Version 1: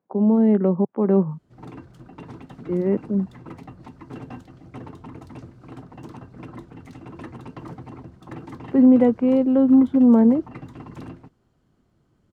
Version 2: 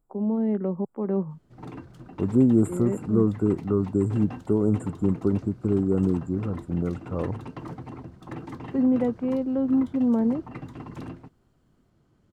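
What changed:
first voice -8.0 dB; second voice: unmuted

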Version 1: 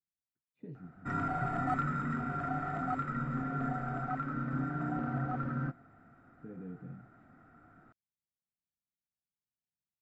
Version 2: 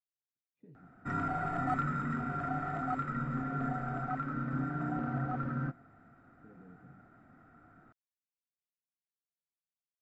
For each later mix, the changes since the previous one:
speech -10.5 dB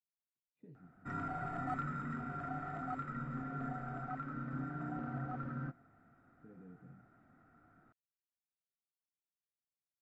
background -6.5 dB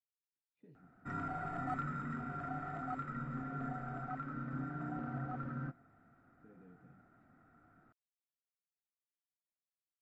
speech: add tilt +2 dB/oct

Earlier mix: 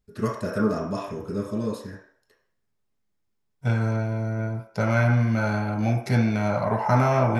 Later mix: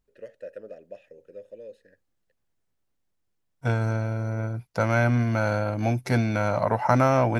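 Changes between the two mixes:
first voice: add vowel filter e; reverb: off

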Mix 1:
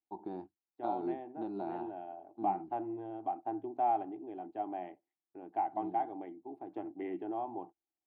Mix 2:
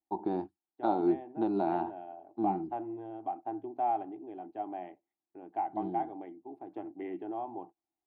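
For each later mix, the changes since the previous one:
first voice +9.5 dB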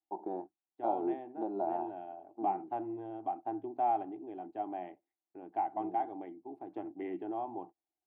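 first voice: add band-pass 590 Hz, Q 1.8

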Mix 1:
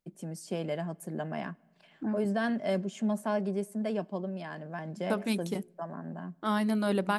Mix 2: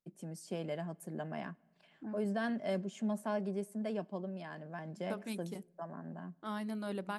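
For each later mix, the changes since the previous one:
first voice -5.5 dB; second voice -11.0 dB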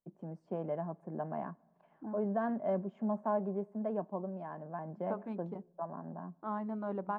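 master: add synth low-pass 970 Hz, resonance Q 2.1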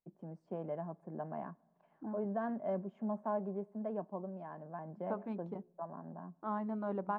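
first voice -3.5 dB

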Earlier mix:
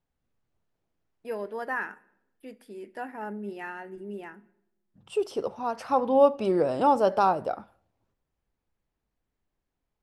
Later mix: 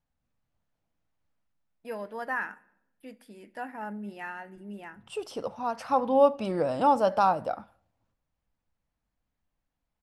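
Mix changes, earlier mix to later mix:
first voice: entry +0.60 s; master: add bell 390 Hz -11.5 dB 0.35 oct

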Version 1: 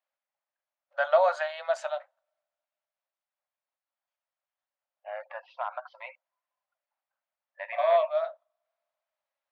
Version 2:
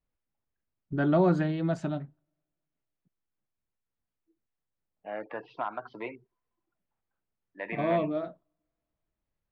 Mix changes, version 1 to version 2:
first voice -6.0 dB; master: remove brick-wall FIR high-pass 520 Hz

